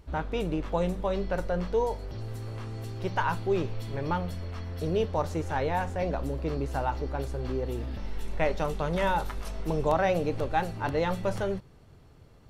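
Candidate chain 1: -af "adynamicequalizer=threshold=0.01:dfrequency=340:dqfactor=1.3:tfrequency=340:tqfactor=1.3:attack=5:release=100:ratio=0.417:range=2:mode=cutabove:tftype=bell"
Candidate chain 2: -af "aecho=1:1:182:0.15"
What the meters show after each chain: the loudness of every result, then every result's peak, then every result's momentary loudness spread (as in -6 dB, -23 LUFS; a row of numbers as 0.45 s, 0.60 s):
-31.5 LUFS, -30.5 LUFS; -13.5 dBFS, -13.5 dBFS; 10 LU, 9 LU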